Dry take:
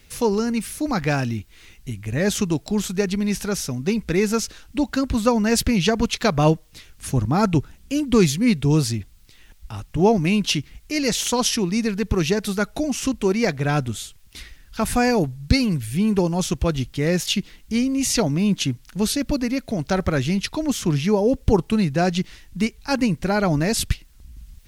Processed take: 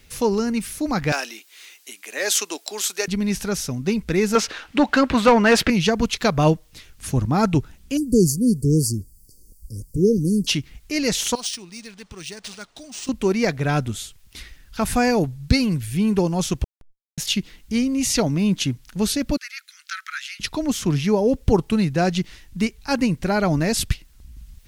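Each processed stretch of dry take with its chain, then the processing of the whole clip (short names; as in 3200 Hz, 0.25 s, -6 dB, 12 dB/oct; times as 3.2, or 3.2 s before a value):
1.12–3.08 Bessel high-pass 550 Hz, order 6 + high shelf 2500 Hz +8.5 dB
4.35–5.7 tone controls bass -4 dB, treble -9 dB + overdrive pedal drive 21 dB, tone 3400 Hz, clips at -4.5 dBFS
7.97–10.47 brick-wall FIR band-stop 550–4400 Hz + resonant high shelf 7100 Hz +6.5 dB, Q 1.5
11.35–13.09 pre-emphasis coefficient 0.9 + decimation joined by straight lines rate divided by 3×
16.64–17.18 passive tone stack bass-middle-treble 6-0-2 + Schmitt trigger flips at -30 dBFS + fast leveller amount 100%
19.37–20.4 steep high-pass 1300 Hz 72 dB/oct + high shelf 5800 Hz -4 dB
whole clip: dry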